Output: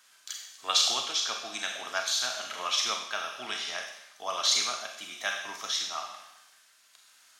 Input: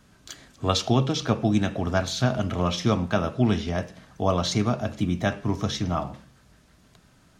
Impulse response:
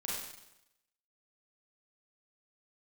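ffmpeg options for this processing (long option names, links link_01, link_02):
-filter_complex "[0:a]highpass=1300,asplit=2[link_01][link_02];[1:a]atrim=start_sample=2205,highshelf=frequency=2700:gain=11.5[link_03];[link_02][link_03]afir=irnorm=-1:irlink=0,volume=-4.5dB[link_04];[link_01][link_04]amix=inputs=2:normalize=0,tremolo=f=1.1:d=0.29,volume=-2dB"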